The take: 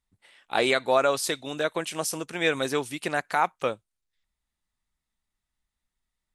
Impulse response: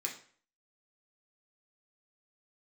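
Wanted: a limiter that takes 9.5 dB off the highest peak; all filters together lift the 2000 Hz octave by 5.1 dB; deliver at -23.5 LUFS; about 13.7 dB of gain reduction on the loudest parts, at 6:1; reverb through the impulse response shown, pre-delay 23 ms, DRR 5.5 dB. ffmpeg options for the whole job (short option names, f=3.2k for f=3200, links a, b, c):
-filter_complex "[0:a]equalizer=f=2k:t=o:g=6.5,acompressor=threshold=-31dB:ratio=6,alimiter=level_in=0.5dB:limit=-24dB:level=0:latency=1,volume=-0.5dB,asplit=2[a][b];[1:a]atrim=start_sample=2205,adelay=23[c];[b][c]afir=irnorm=-1:irlink=0,volume=-6.5dB[d];[a][d]amix=inputs=2:normalize=0,volume=13dB"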